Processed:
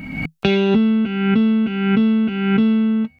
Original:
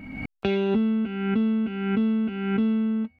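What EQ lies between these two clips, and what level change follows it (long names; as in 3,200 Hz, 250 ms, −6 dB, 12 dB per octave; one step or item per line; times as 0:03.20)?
parametric band 160 Hz +11 dB 0.31 octaves
high-shelf EQ 2,500 Hz +9 dB
+6.0 dB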